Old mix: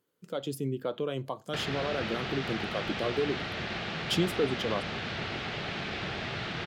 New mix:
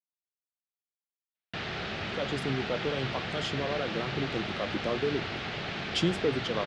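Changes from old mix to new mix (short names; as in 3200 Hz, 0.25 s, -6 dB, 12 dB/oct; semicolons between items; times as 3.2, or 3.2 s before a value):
speech: entry +1.85 s; master: add LPF 8000 Hz 24 dB/oct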